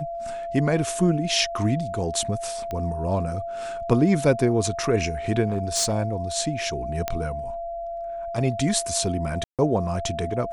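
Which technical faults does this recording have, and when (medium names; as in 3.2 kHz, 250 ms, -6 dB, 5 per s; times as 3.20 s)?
whine 680 Hz -29 dBFS
2.71 s: pop -18 dBFS
5.48–5.94 s: clipped -18.5 dBFS
7.08 s: pop -10 dBFS
9.44–9.59 s: dropout 147 ms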